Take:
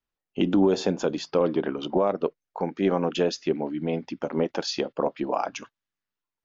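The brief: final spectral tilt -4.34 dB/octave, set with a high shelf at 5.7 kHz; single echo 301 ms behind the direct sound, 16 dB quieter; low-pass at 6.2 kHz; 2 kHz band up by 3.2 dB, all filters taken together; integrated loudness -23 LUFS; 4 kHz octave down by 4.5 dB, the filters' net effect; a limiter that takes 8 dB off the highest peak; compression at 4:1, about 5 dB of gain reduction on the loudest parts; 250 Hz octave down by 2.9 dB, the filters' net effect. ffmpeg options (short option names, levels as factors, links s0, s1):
-af "lowpass=6200,equalizer=f=250:t=o:g=-4,equalizer=f=2000:t=o:g=6.5,equalizer=f=4000:t=o:g=-9,highshelf=f=5700:g=4.5,acompressor=threshold=0.0631:ratio=4,alimiter=limit=0.0891:level=0:latency=1,aecho=1:1:301:0.158,volume=3.35"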